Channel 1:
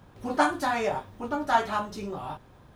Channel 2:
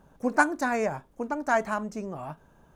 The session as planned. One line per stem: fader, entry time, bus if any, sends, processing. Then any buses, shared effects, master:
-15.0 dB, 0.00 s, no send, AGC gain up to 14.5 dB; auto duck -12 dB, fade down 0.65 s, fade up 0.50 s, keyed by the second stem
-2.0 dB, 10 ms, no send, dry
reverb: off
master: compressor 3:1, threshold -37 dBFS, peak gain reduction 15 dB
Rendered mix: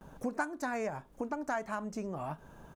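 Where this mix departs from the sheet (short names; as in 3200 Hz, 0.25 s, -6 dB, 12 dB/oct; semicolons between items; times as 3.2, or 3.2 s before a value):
stem 1 -15.0 dB -> -24.0 dB; stem 2 -2.0 dB -> +5.5 dB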